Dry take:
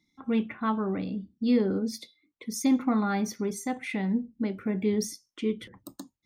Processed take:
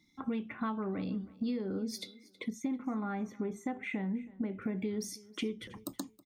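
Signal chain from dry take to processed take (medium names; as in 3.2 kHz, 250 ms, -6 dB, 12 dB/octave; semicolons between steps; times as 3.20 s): compression 12:1, threshold -36 dBFS, peak gain reduction 17.5 dB; 2.50–4.62 s: boxcar filter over 9 samples; feedback delay 321 ms, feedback 26%, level -21 dB; trim +4 dB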